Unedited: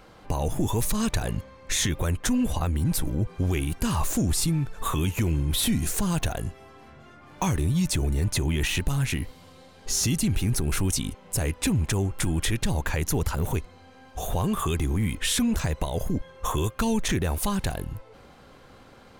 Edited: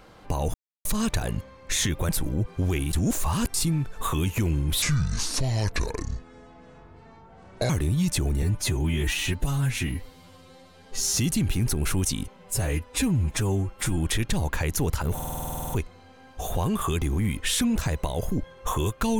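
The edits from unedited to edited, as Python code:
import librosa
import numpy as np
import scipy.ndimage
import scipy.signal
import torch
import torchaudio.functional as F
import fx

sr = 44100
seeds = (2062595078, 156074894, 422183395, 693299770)

y = fx.edit(x, sr, fx.silence(start_s=0.54, length_s=0.31),
    fx.cut(start_s=2.09, length_s=0.81),
    fx.reverse_span(start_s=3.74, length_s=0.61),
    fx.speed_span(start_s=5.63, length_s=1.84, speed=0.64),
    fx.stretch_span(start_s=8.2, length_s=1.82, factor=1.5),
    fx.stretch_span(start_s=11.23, length_s=1.07, factor=1.5),
    fx.stutter(start_s=13.47, slice_s=0.05, count=12), tone=tone)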